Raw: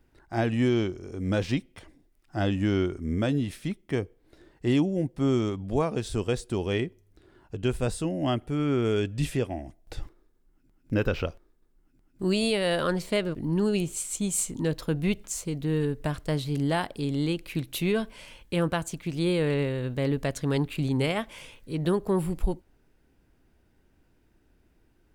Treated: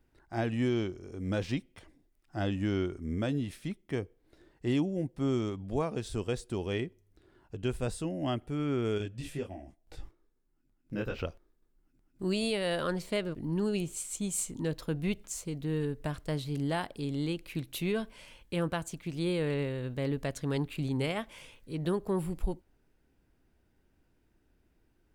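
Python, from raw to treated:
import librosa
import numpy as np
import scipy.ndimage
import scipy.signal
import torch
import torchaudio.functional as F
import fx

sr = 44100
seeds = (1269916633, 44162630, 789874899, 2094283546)

y = fx.detune_double(x, sr, cents=30, at=(8.98, 11.19))
y = F.gain(torch.from_numpy(y), -5.5).numpy()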